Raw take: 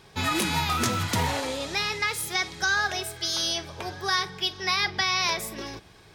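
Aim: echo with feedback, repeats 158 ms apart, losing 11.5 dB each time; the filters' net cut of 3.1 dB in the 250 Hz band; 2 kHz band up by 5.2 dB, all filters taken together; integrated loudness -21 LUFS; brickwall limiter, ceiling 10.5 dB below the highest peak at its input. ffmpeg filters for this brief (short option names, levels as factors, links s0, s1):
-af "equalizer=f=250:t=o:g=-4.5,equalizer=f=2000:t=o:g=6.5,alimiter=limit=0.119:level=0:latency=1,aecho=1:1:158|316|474:0.266|0.0718|0.0194,volume=2.24"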